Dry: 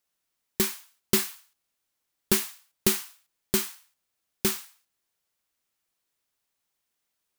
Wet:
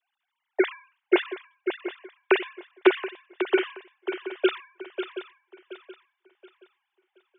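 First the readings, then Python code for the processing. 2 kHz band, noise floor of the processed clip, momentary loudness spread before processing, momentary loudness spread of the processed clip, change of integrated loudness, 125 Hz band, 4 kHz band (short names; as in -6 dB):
+8.5 dB, -83 dBFS, 13 LU, 17 LU, -0.5 dB, under -30 dB, -2.5 dB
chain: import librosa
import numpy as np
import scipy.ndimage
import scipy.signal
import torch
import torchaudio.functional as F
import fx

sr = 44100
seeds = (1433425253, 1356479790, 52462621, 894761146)

y = fx.sine_speech(x, sr)
y = scipy.signal.sosfilt(scipy.signal.butter(2, 280.0, 'highpass', fs=sr, output='sos'), y)
y = fx.echo_swing(y, sr, ms=725, ratio=3, feedback_pct=31, wet_db=-8.5)
y = y * librosa.db_to_amplitude(4.0)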